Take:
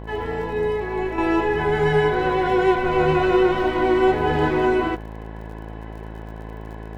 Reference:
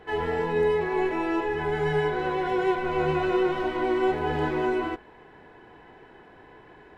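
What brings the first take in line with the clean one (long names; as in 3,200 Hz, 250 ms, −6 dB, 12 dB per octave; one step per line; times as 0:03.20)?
click removal
hum removal 54.4 Hz, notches 20
level correction −6.5 dB, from 0:01.18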